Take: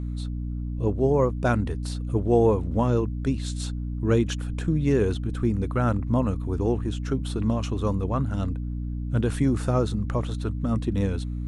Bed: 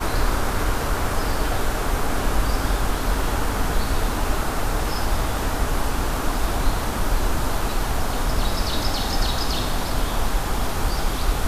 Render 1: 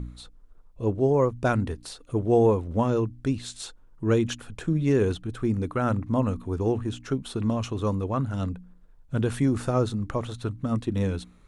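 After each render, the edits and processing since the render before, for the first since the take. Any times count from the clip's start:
hum removal 60 Hz, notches 5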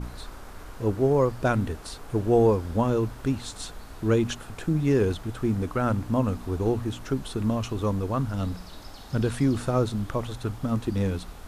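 mix in bed −20.5 dB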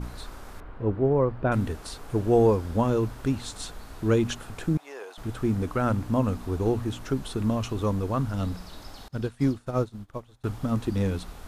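0:00.60–0:01.52: high-frequency loss of the air 490 metres
0:04.77–0:05.18: four-pole ladder high-pass 600 Hz, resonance 45%
0:09.08–0:10.44: expander for the loud parts 2.5 to 1, over −38 dBFS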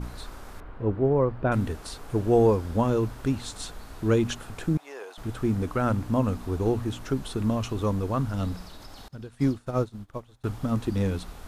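0:08.67–0:09.33: downward compressor 3 to 1, threshold −39 dBFS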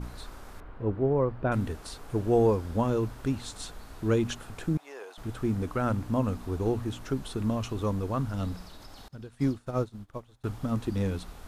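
level −3 dB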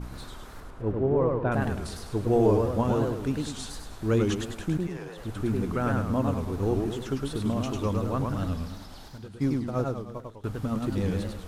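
feedback echo with a swinging delay time 104 ms, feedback 47%, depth 204 cents, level −3 dB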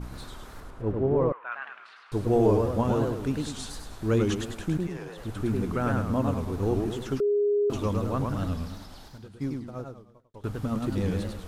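0:01.32–0:02.12: Chebyshev band-pass filter 1,200–2,700 Hz
0:07.20–0:07.70: beep over 411 Hz −20.5 dBFS
0:08.75–0:10.34: fade out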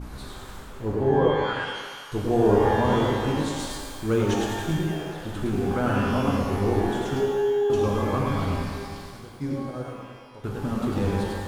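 feedback echo with a band-pass in the loop 118 ms, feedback 77%, band-pass 960 Hz, level −11 dB
reverb with rising layers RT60 1.3 s, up +12 semitones, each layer −8 dB, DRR 0 dB

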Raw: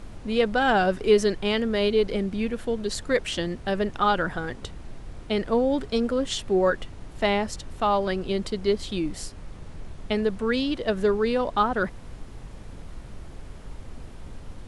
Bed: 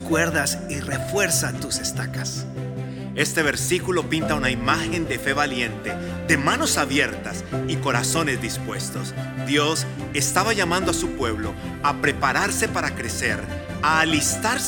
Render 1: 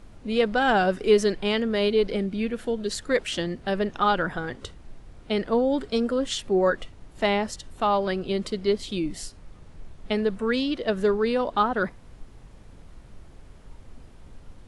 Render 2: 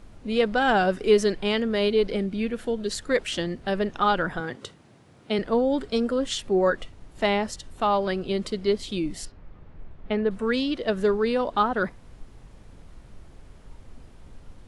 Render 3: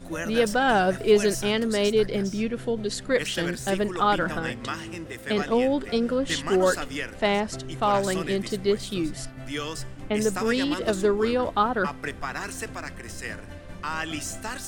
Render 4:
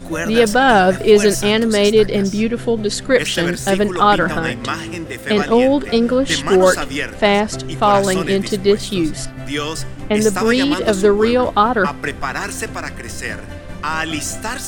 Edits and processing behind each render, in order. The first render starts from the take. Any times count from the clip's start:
noise reduction from a noise print 7 dB
0:04.40–0:05.39: high-pass filter 110 Hz 24 dB per octave; 0:09.25–0:10.31: low-pass filter 2,400 Hz
mix in bed −12 dB
level +9.5 dB; brickwall limiter −1 dBFS, peak gain reduction 2 dB

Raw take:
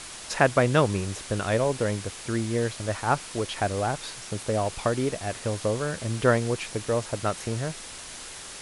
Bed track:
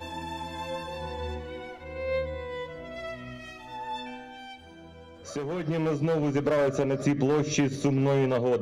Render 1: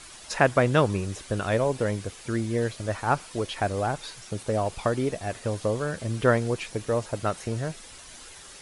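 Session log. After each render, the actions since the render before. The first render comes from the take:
broadband denoise 8 dB, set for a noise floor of −41 dBFS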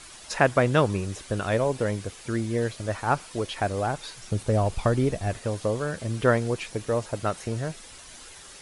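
0:04.23–0:05.39: low-shelf EQ 150 Hz +11.5 dB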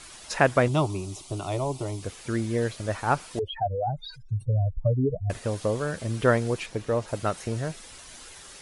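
0:00.68–0:02.03: phaser with its sweep stopped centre 330 Hz, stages 8
0:03.39–0:05.30: expanding power law on the bin magnitudes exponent 3.8
0:06.66–0:07.08: low-pass filter 4,000 Hz 6 dB per octave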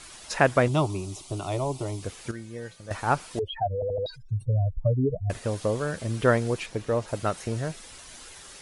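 0:02.31–0:02.91: tuned comb filter 170 Hz, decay 0.21 s, harmonics odd, mix 80%
0:03.74: stutter in place 0.08 s, 4 plays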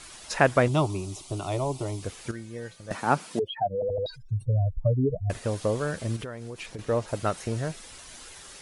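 0:02.91–0:03.89: high-pass with resonance 190 Hz, resonance Q 2.2
0:06.16–0:06.79: downward compressor 10 to 1, threshold −33 dBFS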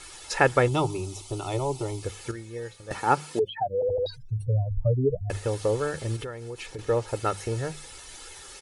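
mains-hum notches 50/100/150/200 Hz
comb filter 2.3 ms, depth 55%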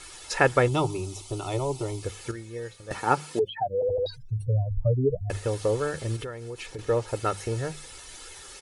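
notch filter 840 Hz, Q 22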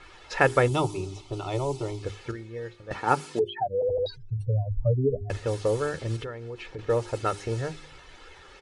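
low-pass that shuts in the quiet parts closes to 2,200 Hz, open at −20 dBFS
hum removal 50.71 Hz, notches 8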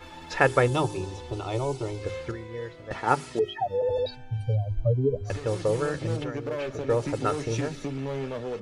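mix in bed track −8 dB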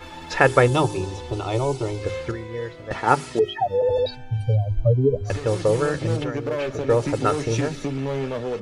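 level +5.5 dB
brickwall limiter −1 dBFS, peak gain reduction 2 dB

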